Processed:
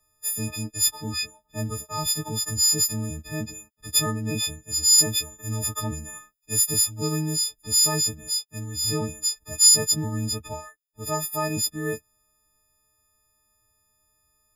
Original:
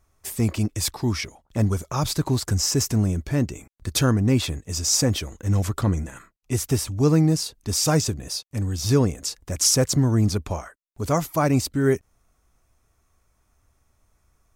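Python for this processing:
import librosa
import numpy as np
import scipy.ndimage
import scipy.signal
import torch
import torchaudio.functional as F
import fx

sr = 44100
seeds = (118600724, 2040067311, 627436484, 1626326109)

y = fx.freq_snap(x, sr, grid_st=6)
y = fx.high_shelf(y, sr, hz=4700.0, db=5.5, at=(4.98, 7.36))
y = y * 10.0 ** (-9.0 / 20.0)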